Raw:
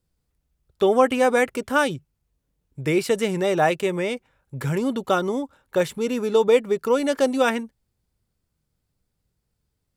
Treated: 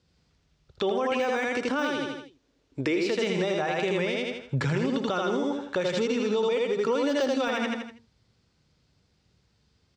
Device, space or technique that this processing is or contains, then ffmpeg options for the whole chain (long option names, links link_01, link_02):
broadcast voice chain: -filter_complex "[0:a]lowpass=frequency=6000:width=0.5412,lowpass=frequency=6000:width=1.3066,asettb=1/sr,asplit=3[link_01][link_02][link_03];[link_01]atrim=end=1.654[link_04];[link_02]atrim=start=1.65:end=2.97,asetpts=PTS-STARTPTS,afade=type=in:duration=0.004:curve=qsin,afade=type=out:start_time=1.316:duration=0.004:curve=qsin,lowshelf=frequency=220:width_type=q:width=3:gain=-6.5[link_05];[link_03]atrim=start=2.966[link_06];[link_04][link_05]acrossfade=duration=0.004:curve1=hsin:curve2=qsin[link_07];[link_07][link_06]acrossfade=duration=0.004:curve1=qsin:curve2=hsin,highpass=71,aecho=1:1:81|162|243|324|405:0.708|0.255|0.0917|0.033|0.0119,deesser=0.7,acompressor=threshold=-30dB:ratio=3,equalizer=frequency=4500:width_type=o:width=2.6:gain=5,alimiter=level_in=2dB:limit=-24dB:level=0:latency=1:release=95,volume=-2dB,volume=8dB"